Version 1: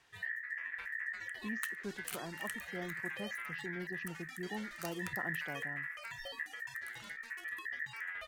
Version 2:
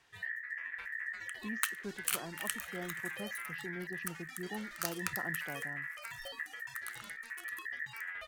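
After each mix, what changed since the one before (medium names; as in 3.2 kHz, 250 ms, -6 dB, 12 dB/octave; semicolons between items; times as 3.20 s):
second sound +10.0 dB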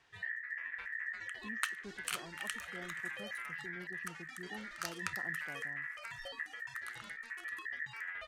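speech -6.5 dB; master: add distance through air 57 m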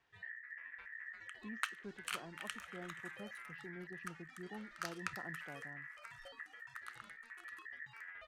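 first sound -7.0 dB; master: add treble shelf 4.1 kHz -8.5 dB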